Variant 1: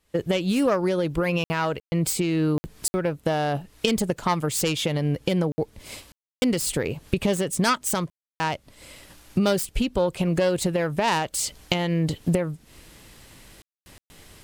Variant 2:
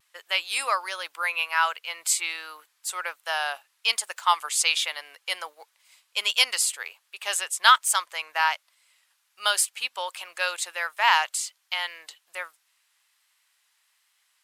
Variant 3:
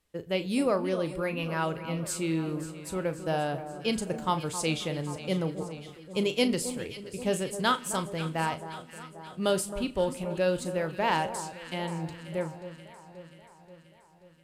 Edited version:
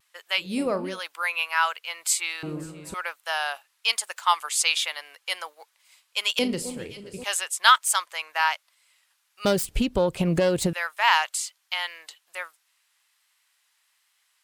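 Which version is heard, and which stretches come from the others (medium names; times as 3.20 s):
2
0.45–0.92 s: from 3, crossfade 0.16 s
2.43–2.94 s: from 3
6.39–7.24 s: from 3
9.45–10.73 s: from 1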